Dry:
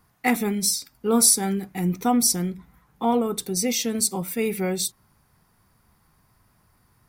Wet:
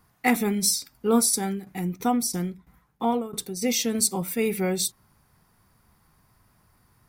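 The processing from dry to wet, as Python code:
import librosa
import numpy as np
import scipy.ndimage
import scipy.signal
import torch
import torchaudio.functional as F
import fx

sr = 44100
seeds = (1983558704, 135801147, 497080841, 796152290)

y = fx.tremolo_shape(x, sr, shape='saw_down', hz=3.0, depth_pct=fx.line((1.19, 65.0), (3.61, 90.0)), at=(1.19, 3.61), fade=0.02)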